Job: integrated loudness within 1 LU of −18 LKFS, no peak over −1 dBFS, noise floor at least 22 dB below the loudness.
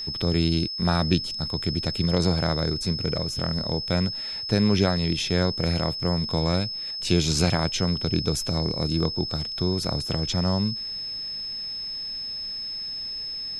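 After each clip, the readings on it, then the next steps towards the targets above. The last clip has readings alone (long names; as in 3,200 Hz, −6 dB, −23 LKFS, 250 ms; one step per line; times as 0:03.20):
interfering tone 5,200 Hz; level of the tone −30 dBFS; integrated loudness −25.0 LKFS; sample peak −7.0 dBFS; target loudness −18.0 LKFS
→ notch filter 5,200 Hz, Q 30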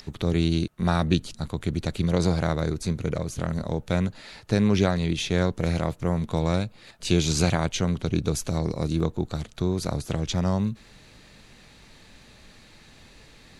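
interfering tone none found; integrated loudness −26.0 LKFS; sample peak −7.5 dBFS; target loudness −18.0 LKFS
→ level +8 dB
brickwall limiter −1 dBFS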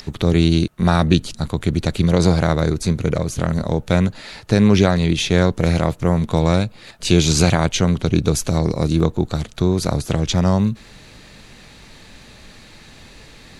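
integrated loudness −18.5 LKFS; sample peak −1.0 dBFS; background noise floor −44 dBFS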